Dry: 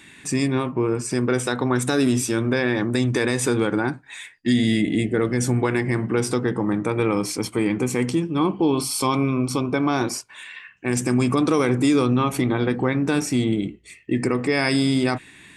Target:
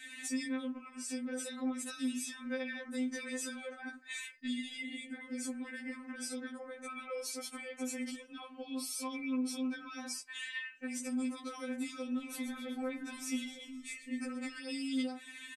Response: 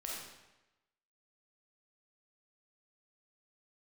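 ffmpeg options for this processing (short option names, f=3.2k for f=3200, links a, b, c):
-filter_complex "[0:a]lowshelf=f=370:g=-12,alimiter=limit=-21.5dB:level=0:latency=1:release=74,acompressor=threshold=-37dB:ratio=5,asuperstop=centerf=900:order=4:qfactor=2.5,asplit=3[a][b][c];[a]afade=t=out:st=12.16:d=0.02[d];[b]asplit=7[e][f][g][h][i][j][k];[f]adelay=129,afreqshift=-38,volume=-13dB[l];[g]adelay=258,afreqshift=-76,volume=-17.7dB[m];[h]adelay=387,afreqshift=-114,volume=-22.5dB[n];[i]adelay=516,afreqshift=-152,volume=-27.2dB[o];[j]adelay=645,afreqshift=-190,volume=-31.9dB[p];[k]adelay=774,afreqshift=-228,volume=-36.7dB[q];[e][l][m][n][o][p][q]amix=inputs=7:normalize=0,afade=t=in:st=12.16:d=0.02,afade=t=out:st=14.58:d=0.02[r];[c]afade=t=in:st=14.58:d=0.02[s];[d][r][s]amix=inputs=3:normalize=0,afftfilt=real='re*3.46*eq(mod(b,12),0)':imag='im*3.46*eq(mod(b,12),0)':win_size=2048:overlap=0.75,volume=1.5dB"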